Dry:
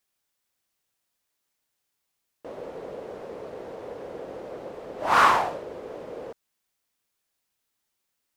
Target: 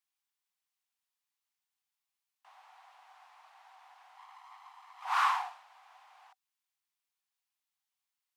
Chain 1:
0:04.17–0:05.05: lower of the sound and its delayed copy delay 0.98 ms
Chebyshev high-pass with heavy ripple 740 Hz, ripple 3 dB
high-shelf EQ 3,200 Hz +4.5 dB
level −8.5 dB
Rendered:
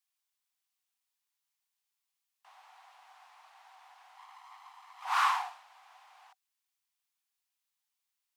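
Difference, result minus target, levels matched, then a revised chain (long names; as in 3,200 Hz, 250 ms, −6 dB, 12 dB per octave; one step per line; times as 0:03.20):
8,000 Hz band +3.0 dB
0:04.17–0:05.05: lower of the sound and its delayed copy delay 0.98 ms
Chebyshev high-pass with heavy ripple 740 Hz, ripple 3 dB
level −8.5 dB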